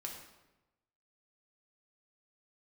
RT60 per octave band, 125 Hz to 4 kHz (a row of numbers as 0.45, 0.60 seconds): 1.2, 1.1, 1.1, 1.0, 0.85, 0.75 seconds